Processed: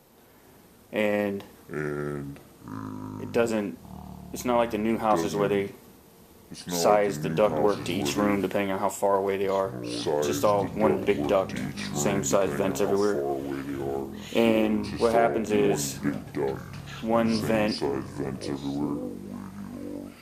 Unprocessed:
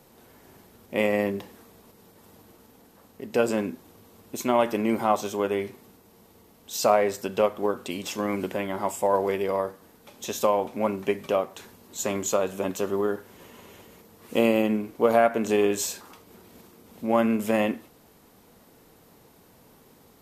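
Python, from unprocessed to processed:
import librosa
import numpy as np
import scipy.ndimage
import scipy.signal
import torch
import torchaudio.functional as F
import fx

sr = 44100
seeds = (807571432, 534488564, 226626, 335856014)

y = fx.rider(x, sr, range_db=3, speed_s=0.5)
y = fx.echo_pitch(y, sr, ms=379, semitones=-6, count=3, db_per_echo=-6.0)
y = fx.doppler_dist(y, sr, depth_ms=0.13)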